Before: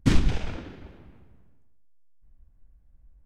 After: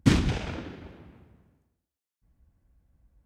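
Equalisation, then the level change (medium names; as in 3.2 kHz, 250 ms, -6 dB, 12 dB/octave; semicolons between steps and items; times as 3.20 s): high-pass 71 Hz 12 dB/octave; +2.0 dB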